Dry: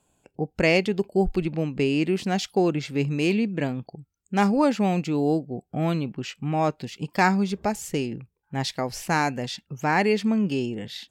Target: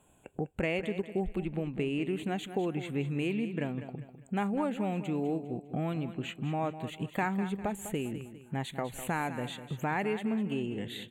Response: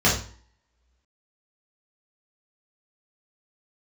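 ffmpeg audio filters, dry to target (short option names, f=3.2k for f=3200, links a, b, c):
-af "acompressor=threshold=-40dB:ratio=2.5,asuperstop=centerf=5200:order=4:qfactor=1.3,aecho=1:1:201|402|603|804:0.266|0.0984|0.0364|0.0135,volume=4dB"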